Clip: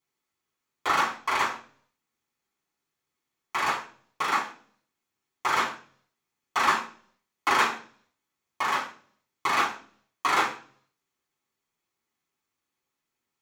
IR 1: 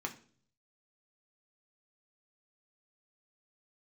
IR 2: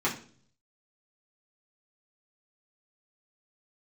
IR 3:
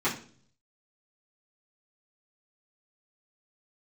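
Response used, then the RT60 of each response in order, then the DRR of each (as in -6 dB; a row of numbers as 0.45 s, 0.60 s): 2; 0.45 s, 0.45 s, 0.45 s; 2.5 dB, -6.5 dB, -10.5 dB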